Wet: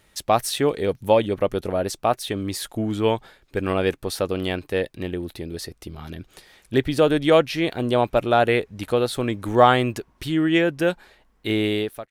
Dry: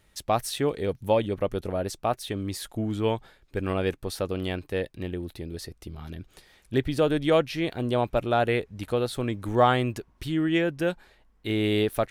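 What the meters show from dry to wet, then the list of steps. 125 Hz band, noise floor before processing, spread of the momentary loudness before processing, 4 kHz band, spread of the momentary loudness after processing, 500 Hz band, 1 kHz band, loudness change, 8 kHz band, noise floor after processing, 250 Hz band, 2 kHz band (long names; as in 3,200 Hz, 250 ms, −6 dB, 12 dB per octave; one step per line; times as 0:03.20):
+2.0 dB, −63 dBFS, 14 LU, +5.5 dB, 15 LU, +5.0 dB, +5.5 dB, +5.0 dB, +6.0 dB, −61 dBFS, +4.5 dB, +5.5 dB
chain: fade-out on the ending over 0.58 s
low-shelf EQ 140 Hz −7 dB
level +6 dB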